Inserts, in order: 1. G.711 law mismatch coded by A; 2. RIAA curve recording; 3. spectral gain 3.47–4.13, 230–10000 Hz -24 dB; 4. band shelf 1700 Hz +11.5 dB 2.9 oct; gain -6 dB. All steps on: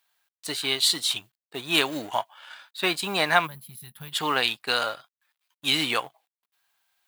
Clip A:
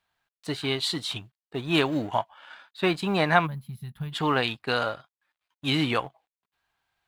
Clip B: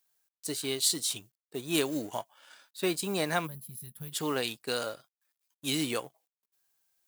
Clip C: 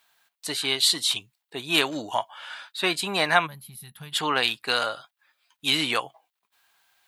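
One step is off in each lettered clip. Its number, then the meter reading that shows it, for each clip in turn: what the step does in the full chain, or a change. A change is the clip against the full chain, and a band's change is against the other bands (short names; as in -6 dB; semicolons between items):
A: 2, 8 kHz band -13.0 dB; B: 4, 2 kHz band -10.5 dB; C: 1, distortion -27 dB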